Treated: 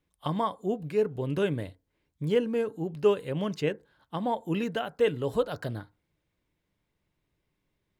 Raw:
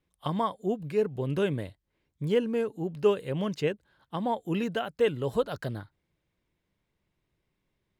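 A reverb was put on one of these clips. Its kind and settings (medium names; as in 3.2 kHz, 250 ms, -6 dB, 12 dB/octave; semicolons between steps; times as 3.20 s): FDN reverb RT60 0.3 s, low-frequency decay 1×, high-frequency decay 0.35×, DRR 16 dB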